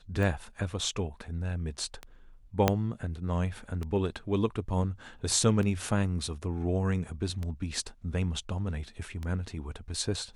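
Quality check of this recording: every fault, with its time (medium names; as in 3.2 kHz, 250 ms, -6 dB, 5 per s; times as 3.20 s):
tick 33 1/3 rpm
2.68 s: pop -8 dBFS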